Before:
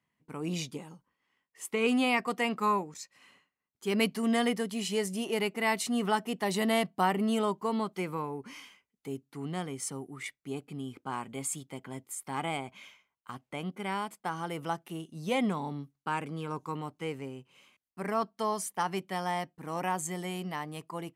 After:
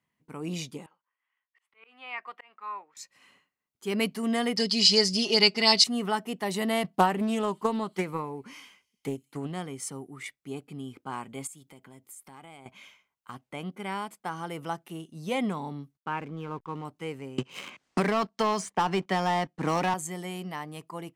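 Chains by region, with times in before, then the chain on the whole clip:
0:00.86–0:02.97: high-pass filter 1,200 Hz + volume swells 375 ms + high-frequency loss of the air 430 metres
0:04.57–0:05.84: low-pass with resonance 4,800 Hz, resonance Q 12 + high-shelf EQ 3,400 Hz +10 dB + comb filter 4.8 ms, depth 85%
0:06.84–0:09.52: transient designer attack +8 dB, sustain +1 dB + delay with a high-pass on its return 95 ms, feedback 66%, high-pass 4,100 Hz, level −22 dB + highs frequency-modulated by the lows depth 0.18 ms
0:11.47–0:12.66: downward compressor 3 to 1, threshold −50 dBFS + high-shelf EQ 9,500 Hz +7 dB
0:15.97–0:16.85: low-pass filter 3,300 Hz 24 dB per octave + slack as between gear wheels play −50 dBFS
0:17.38–0:19.94: low-pass filter 7,500 Hz 24 dB per octave + leveller curve on the samples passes 2 + multiband upward and downward compressor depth 100%
whole clip: no processing

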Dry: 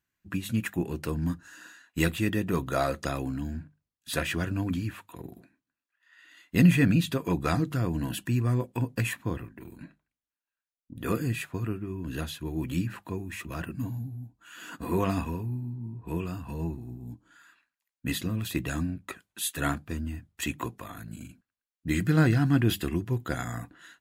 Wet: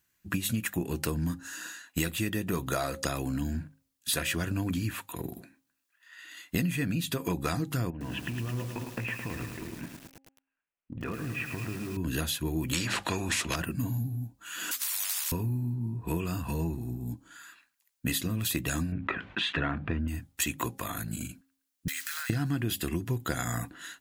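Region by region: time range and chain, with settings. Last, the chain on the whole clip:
0:07.90–0:11.97: Chebyshev low-pass filter 2,700 Hz, order 4 + downward compressor 16 to 1, threshold −36 dBFS + feedback echo at a low word length 108 ms, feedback 80%, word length 9 bits, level −6.5 dB
0:12.73–0:13.56: low-pass filter 5,500 Hz + every bin compressed towards the loudest bin 2 to 1
0:14.71–0:15.32: Butterworth high-pass 2,000 Hz + every bin compressed towards the loudest bin 10 to 1
0:18.92–0:20.08: low-pass filter 2,600 Hz 24 dB per octave + envelope flattener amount 50%
0:21.88–0:22.30: one scale factor per block 5 bits + high-pass filter 1,300 Hz 24 dB per octave + downward compressor, threshold −41 dBFS
whole clip: high-shelf EQ 4,000 Hz +9.5 dB; downward compressor 12 to 1, threshold −31 dBFS; hum removal 269 Hz, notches 3; level +5 dB

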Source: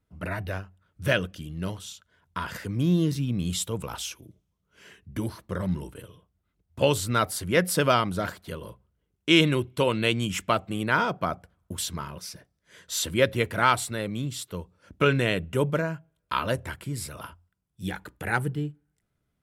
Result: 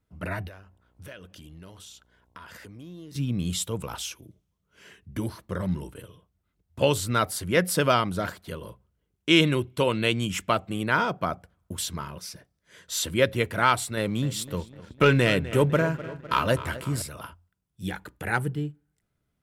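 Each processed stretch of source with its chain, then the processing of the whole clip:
0:00.47–0:03.14: parametric band 140 Hz −7 dB 0.97 octaves + downward compressor 4 to 1, threshold −43 dBFS + hum with harmonics 60 Hz, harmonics 18, −68 dBFS −5 dB per octave
0:13.97–0:17.02: feedback echo with a low-pass in the loop 252 ms, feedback 64%, low-pass 3,800 Hz, level −15.5 dB + leveller curve on the samples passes 1
whole clip: no processing

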